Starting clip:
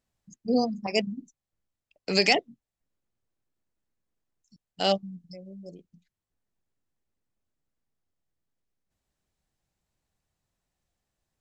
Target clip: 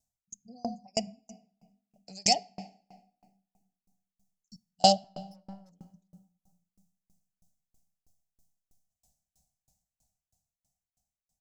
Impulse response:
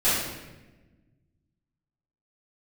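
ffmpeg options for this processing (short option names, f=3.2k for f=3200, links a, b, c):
-filter_complex "[0:a]firequalizer=gain_entry='entry(220,0);entry(350,-20);entry(730,5);entry(1100,-21);entry(6100,10);entry(8900,8)':delay=0.05:min_phase=1,dynaudnorm=f=400:g=11:m=14dB,asettb=1/sr,asplit=3[a][b][c];[a]atrim=end=5.044[d];[b]atrim=start=5.04:end=5.71,asetpts=PTS-STARTPTS,afade=t=in:d=0.004:c=qsin,afade=t=out:st=0.666:d=0.004:c=qsin,aeval=exprs='(tanh(89.1*val(0)+0.2)-tanh(0.2))/89.1':c=same[e];[c]atrim=start=5.706[f];[d][e]acrossfade=d=0.004:c1=hsin:c2=qsin[g];[g][f]acrossfade=d=0.004:c1=qsin:c2=hsin,asplit=2[h][i];[1:a]atrim=start_sample=2205,asetrate=24255,aresample=44100,lowpass=4.5k[j];[i][j]afir=irnorm=-1:irlink=0,volume=-32dB[k];[h][k]amix=inputs=2:normalize=0,aeval=exprs='val(0)*pow(10,-34*if(lt(mod(3.1*n/s,1),2*abs(3.1)/1000),1-mod(3.1*n/s,1)/(2*abs(3.1)/1000),(mod(3.1*n/s,1)-2*abs(3.1)/1000)/(1-2*abs(3.1)/1000))/20)':c=same"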